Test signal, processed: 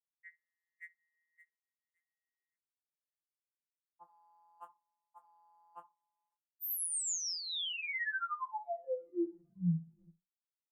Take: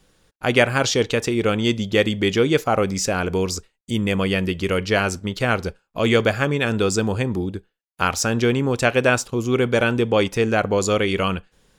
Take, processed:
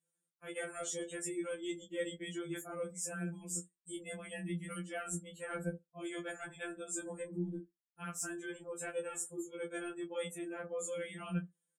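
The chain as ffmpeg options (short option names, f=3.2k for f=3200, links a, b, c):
-filter_complex "[0:a]highshelf=f=6.5k:t=q:w=3:g=10.5,asplit=2[a][b];[b]adelay=61,lowpass=f=1k:p=1,volume=-13dB,asplit=2[c][d];[d]adelay=61,lowpass=f=1k:p=1,volume=0.3,asplit=2[e][f];[f]adelay=61,lowpass=f=1k:p=1,volume=0.3[g];[c][e][g]amix=inputs=3:normalize=0[h];[a][h]amix=inputs=2:normalize=0,afftdn=nr=25:nf=-32,highpass=f=89:w=0.5412,highpass=f=89:w=1.3066,areverse,acompressor=threshold=-29dB:ratio=12,areverse,asplit=2[i][j];[j]adelay=18,volume=-7.5dB[k];[i][k]amix=inputs=2:normalize=0,afftfilt=real='re*2.83*eq(mod(b,8),0)':imag='im*2.83*eq(mod(b,8),0)':win_size=2048:overlap=0.75,volume=-5.5dB"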